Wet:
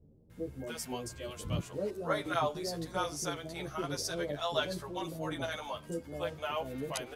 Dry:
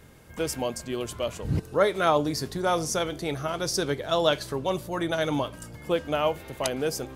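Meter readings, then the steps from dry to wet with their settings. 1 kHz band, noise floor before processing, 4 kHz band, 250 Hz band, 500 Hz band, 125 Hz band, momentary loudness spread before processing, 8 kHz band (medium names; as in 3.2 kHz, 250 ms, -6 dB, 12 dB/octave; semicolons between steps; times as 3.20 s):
-8.5 dB, -46 dBFS, -7.5 dB, -9.0 dB, -10.0 dB, -8.0 dB, 8 LU, -8.0 dB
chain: bands offset in time lows, highs 300 ms, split 520 Hz; endless flanger 11.3 ms +1.6 Hz; trim -4.5 dB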